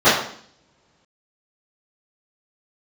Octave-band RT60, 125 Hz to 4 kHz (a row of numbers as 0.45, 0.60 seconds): 1.9, 0.85, 0.60, 0.55, 0.55, 0.60 seconds